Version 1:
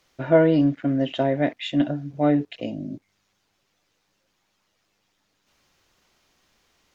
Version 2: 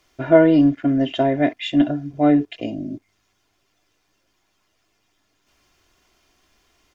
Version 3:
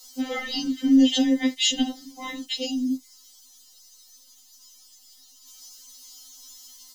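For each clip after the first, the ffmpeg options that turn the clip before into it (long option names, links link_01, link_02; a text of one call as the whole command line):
ffmpeg -i in.wav -af "lowshelf=frequency=210:gain=3,bandreject=frequency=4000:width=13,aecho=1:1:2.9:0.44,volume=2dB" out.wav
ffmpeg -i in.wav -af "aexciter=amount=15.7:drive=4.1:freq=3500,afftfilt=real='re*3.46*eq(mod(b,12),0)':imag='im*3.46*eq(mod(b,12),0)':win_size=2048:overlap=0.75" out.wav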